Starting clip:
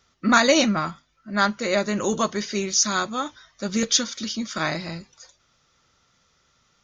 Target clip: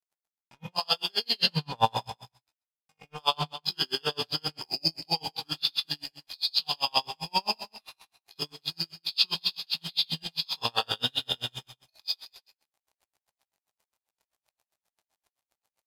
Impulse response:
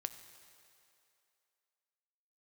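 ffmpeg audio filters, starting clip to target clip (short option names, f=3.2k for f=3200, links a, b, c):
-filter_complex "[0:a]adynamicequalizer=threshold=0.0141:dfrequency=3800:dqfactor=1.3:tfrequency=3800:tqfactor=1.3:attack=5:release=100:ratio=0.375:range=2:mode=boostabove:tftype=bell,aexciter=amount=14.5:drive=4.9:freq=4.5k,areverse,acompressor=threshold=-16dB:ratio=20,areverse,atempo=0.59,aeval=exprs='val(0)+0.0112*sin(2*PI*3400*n/s)':c=same,aeval=exprs='sgn(val(0))*max(abs(val(0))-0.0168,0)':c=same,flanger=delay=7.6:depth=5.6:regen=47:speed=1.1:shape=triangular,asetrate=32193,aresample=44100,equalizer=f=780:t=o:w=0.9:g=10.5,aecho=1:1:204:0.15[a];[1:a]atrim=start_sample=2205,afade=t=out:st=0.19:d=0.01,atrim=end_sample=8820[b];[a][b]afir=irnorm=-1:irlink=0,aeval=exprs='val(0)*pow(10,-40*(0.5-0.5*cos(2*PI*7.6*n/s))/20)':c=same,volume=4.5dB"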